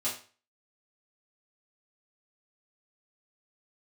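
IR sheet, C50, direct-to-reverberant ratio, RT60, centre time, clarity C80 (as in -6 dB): 7.5 dB, -9.5 dB, 0.40 s, 28 ms, 12.5 dB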